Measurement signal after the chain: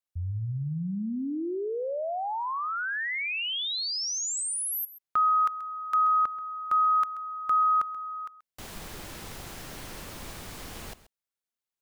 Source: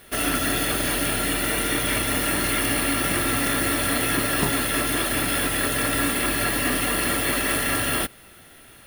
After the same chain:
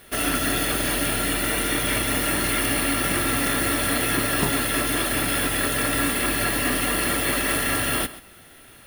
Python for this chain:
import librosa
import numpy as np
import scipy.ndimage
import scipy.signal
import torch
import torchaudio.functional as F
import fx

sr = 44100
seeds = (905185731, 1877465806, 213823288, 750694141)

y = x + 10.0 ** (-16.5 / 20.0) * np.pad(x, (int(132 * sr / 1000.0), 0))[:len(x)]